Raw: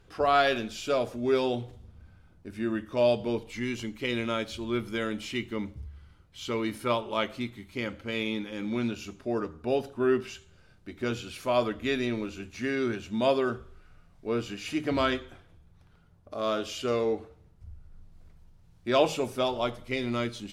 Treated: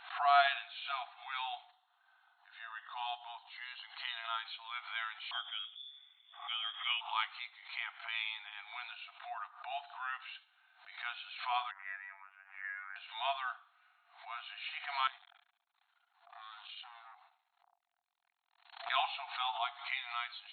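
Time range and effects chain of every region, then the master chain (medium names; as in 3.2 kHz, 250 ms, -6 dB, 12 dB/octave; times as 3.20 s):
1.70–4.43 s: peaking EQ 2.3 kHz -13.5 dB 0.23 oct + upward compressor, threshold -43 dBFS
5.31–7.01 s: frequency inversion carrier 3.5 kHz + distance through air 330 m
11.71–12.96 s: tilt shelf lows -8 dB, about 1.4 kHz + robot voice 97.2 Hz + elliptic low-pass 1.9 kHz, stop band 60 dB
15.07–18.90 s: treble shelf 2.9 kHz +6 dB + compression 12:1, threshold -37 dBFS + transformer saturation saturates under 2.7 kHz
whole clip: FFT band-pass 680–4300 Hz; swell ahead of each attack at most 110 dB/s; trim -3.5 dB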